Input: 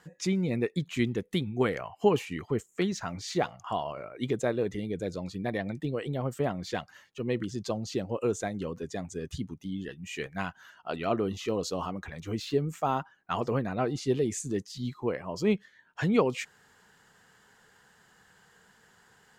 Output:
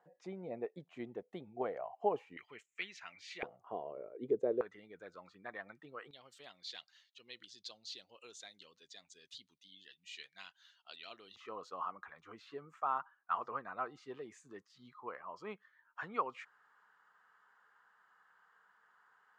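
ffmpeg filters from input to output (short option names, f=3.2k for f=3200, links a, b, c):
-af "asetnsamples=n=441:p=0,asendcmd='2.37 bandpass f 2400;3.43 bandpass f 440;4.61 bandpass f 1300;6.11 bandpass f 3900;11.36 bandpass f 1200',bandpass=f=690:t=q:w=3.5:csg=0"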